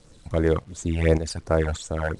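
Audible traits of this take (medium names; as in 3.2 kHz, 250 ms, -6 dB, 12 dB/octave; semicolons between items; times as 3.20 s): phasing stages 12, 2.8 Hz, lowest notch 350–3900 Hz; tremolo saw up 1.7 Hz, depth 70%; a quantiser's noise floor 10-bit, dither none; IMA ADPCM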